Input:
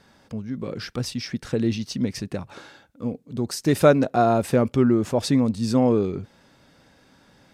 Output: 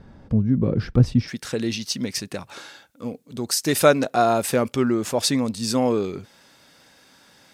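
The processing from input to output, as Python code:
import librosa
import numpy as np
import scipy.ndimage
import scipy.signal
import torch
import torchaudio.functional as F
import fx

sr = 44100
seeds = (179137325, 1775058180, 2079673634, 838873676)

y = fx.tilt_eq(x, sr, slope=fx.steps((0.0, -4.0), (1.27, 2.5)))
y = F.gain(torch.from_numpy(y), 2.0).numpy()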